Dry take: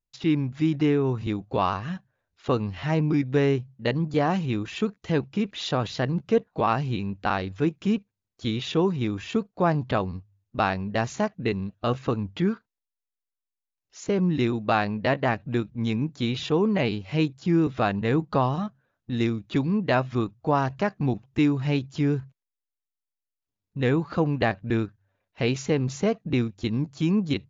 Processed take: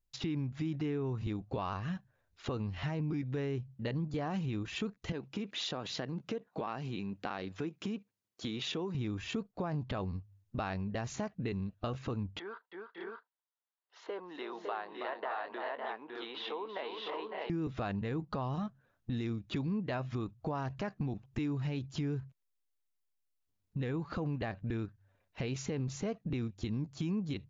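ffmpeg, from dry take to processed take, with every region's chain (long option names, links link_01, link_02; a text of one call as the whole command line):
ffmpeg -i in.wav -filter_complex "[0:a]asettb=1/sr,asplit=3[link_01][link_02][link_03];[link_01]atrim=end=5.124[link_04];[link_02]atrim=start=5.12:end=8.95,asetpts=PTS-STARTPTS,afade=type=in:duration=0.004:curve=qsin,afade=type=out:start_time=3.826:duration=0.004:curve=qsin,acompressor=threshold=-27dB:ratio=4:attack=3.2:release=140:knee=1:detection=peak,highpass=200[link_05];[link_03]atrim=start=8.946[link_06];[link_04][link_05]acrossfade=duration=0.004:curve1=hsin:curve2=qsin[link_07];[link_07][link_06]acrossfade=duration=0.004:curve1=qsin:curve2=hsin,asettb=1/sr,asplit=3[link_08][link_09][link_10];[link_08]atrim=end=12.394[link_11];[link_09]atrim=start=12.39:end=17.5,asetpts=PTS-STARTPTS,afade=type=in:duration=0.004:curve=qsin,afade=type=out:start_time=5.106:duration=0.004:curve=qsin,aecho=1:1:325|556|583|615:0.316|0.316|0.316|0.596,atrim=end_sample=225351,acompressor=threshold=-27dB:ratio=3:attack=3.2:release=140:knee=1:detection=peak,highpass=frequency=470:width=0.5412,highpass=frequency=470:width=1.3066,equalizer=frequency=570:width_type=q:width=4:gain=-4,equalizer=frequency=960:width_type=q:width=4:gain=5,equalizer=frequency=2400:width_type=q:width=4:gain=-10,lowpass=frequency=3400:width=0.5412,lowpass=frequency=3400:width=1.3066[link_12];[link_10]atrim=start=17.496[link_13];[link_11][link_12]acrossfade=duration=0.004:curve1=hsin:curve2=qsin[link_14];[link_14][link_13]acrossfade=duration=0.004:curve1=qsin:curve2=hsin,lowshelf=frequency=87:gain=8,alimiter=limit=-17.5dB:level=0:latency=1:release=31,acompressor=threshold=-37dB:ratio=2.5" out.wav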